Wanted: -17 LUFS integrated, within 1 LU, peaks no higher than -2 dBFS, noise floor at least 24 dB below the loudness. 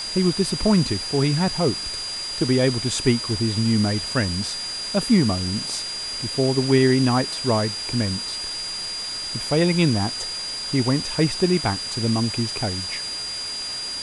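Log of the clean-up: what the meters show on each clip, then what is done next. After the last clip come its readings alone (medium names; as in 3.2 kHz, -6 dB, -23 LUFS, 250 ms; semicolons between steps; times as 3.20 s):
steady tone 4.8 kHz; tone level -28 dBFS; noise floor -30 dBFS; noise floor target -46 dBFS; loudness -22.0 LUFS; peak level -6.0 dBFS; loudness target -17.0 LUFS
-> band-stop 4.8 kHz, Q 30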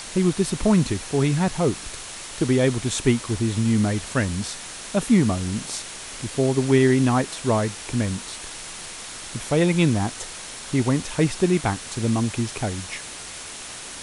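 steady tone not found; noise floor -37 dBFS; noise floor target -47 dBFS
-> noise print and reduce 10 dB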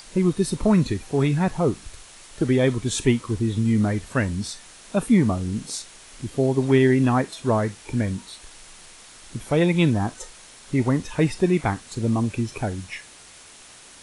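noise floor -47 dBFS; loudness -23.0 LUFS; peak level -6.5 dBFS; loudness target -17.0 LUFS
-> trim +6 dB; peak limiter -2 dBFS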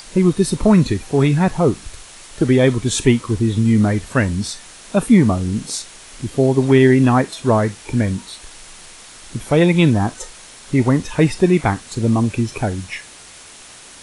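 loudness -17.0 LUFS; peak level -2.0 dBFS; noise floor -41 dBFS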